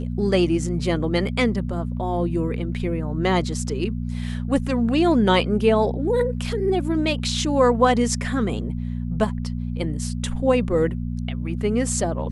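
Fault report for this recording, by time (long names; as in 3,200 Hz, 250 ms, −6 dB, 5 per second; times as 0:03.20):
mains hum 60 Hz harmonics 4 −27 dBFS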